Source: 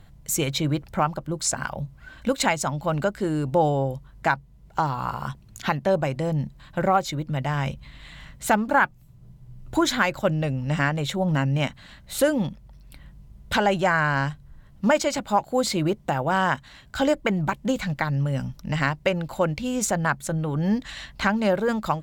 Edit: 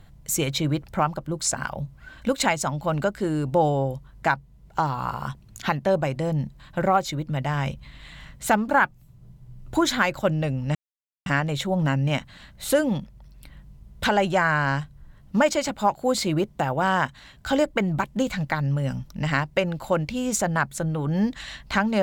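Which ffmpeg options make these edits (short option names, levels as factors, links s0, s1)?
-filter_complex "[0:a]asplit=2[s0][s1];[s0]atrim=end=10.75,asetpts=PTS-STARTPTS,afade=t=out:st=10.746:d=0.004:c=hsin,apad=pad_dur=0.51[s2];[s1]atrim=start=10.75,asetpts=PTS-STARTPTS,afade=t=in:d=0.004:c=hsin[s3];[s2][s3]concat=n=2:v=0:a=1"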